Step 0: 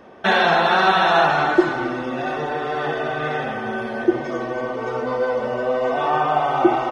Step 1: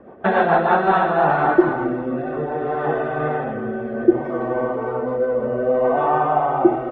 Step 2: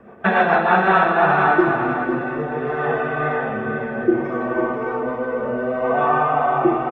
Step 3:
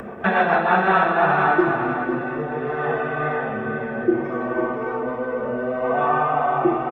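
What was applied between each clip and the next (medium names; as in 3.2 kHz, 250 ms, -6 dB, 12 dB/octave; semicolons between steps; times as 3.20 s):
low-pass 1.2 kHz 12 dB/octave; rotary cabinet horn 7 Hz, later 0.65 Hz, at 0.41 s; trim +4.5 dB
delay 501 ms -7.5 dB; reverberation RT60 1.0 s, pre-delay 3 ms, DRR 8 dB; trim +4.5 dB
upward compressor, threshold -22 dBFS; trim -2 dB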